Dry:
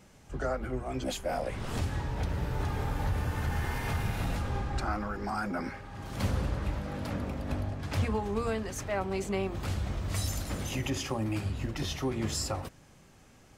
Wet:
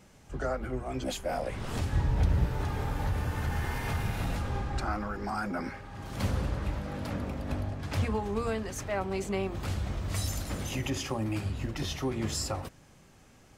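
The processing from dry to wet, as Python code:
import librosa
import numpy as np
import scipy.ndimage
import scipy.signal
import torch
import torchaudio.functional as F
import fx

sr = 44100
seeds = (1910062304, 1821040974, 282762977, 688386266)

y = fx.low_shelf(x, sr, hz=200.0, db=8.5, at=(1.93, 2.47))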